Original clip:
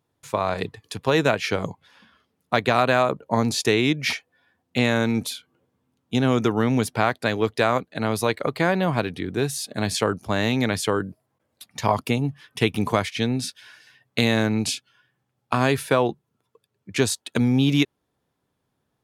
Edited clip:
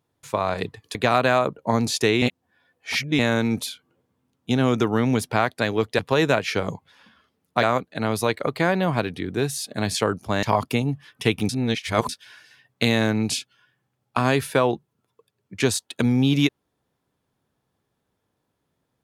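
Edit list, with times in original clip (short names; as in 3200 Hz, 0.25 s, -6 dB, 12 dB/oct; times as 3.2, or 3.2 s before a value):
0.95–2.59 move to 7.63
3.86–4.83 reverse
10.43–11.79 cut
12.85–13.45 reverse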